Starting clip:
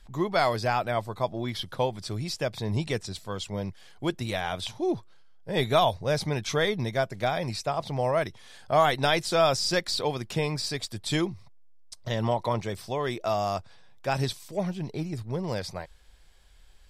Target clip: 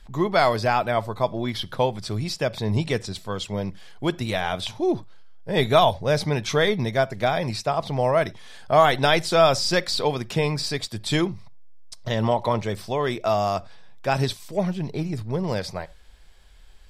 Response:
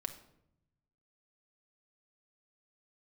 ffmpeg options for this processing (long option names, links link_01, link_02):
-filter_complex "[0:a]asplit=2[link_01][link_02];[1:a]atrim=start_sample=2205,atrim=end_sample=4410,lowpass=5700[link_03];[link_02][link_03]afir=irnorm=-1:irlink=0,volume=-8dB[link_04];[link_01][link_04]amix=inputs=2:normalize=0,volume=2.5dB"